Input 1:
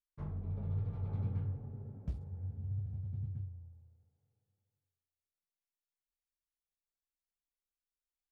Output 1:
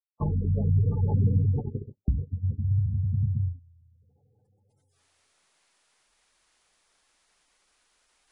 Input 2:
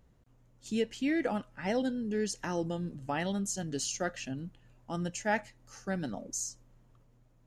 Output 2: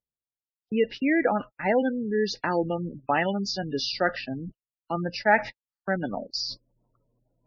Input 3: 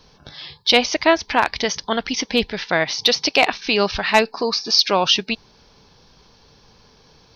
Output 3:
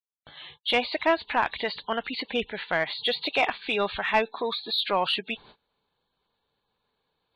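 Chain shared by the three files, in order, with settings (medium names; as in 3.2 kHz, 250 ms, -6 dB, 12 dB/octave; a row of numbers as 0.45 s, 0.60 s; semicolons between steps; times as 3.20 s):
knee-point frequency compression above 2.6 kHz 1.5:1; gate -42 dBFS, range -59 dB; reverse; upward compressor, threshold -37 dBFS; reverse; spectral gate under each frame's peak -25 dB strong; overdrive pedal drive 11 dB, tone 2.4 kHz, clips at -1.5 dBFS; normalise loudness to -27 LUFS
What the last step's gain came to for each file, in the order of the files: +18.0 dB, +6.5 dB, -9.0 dB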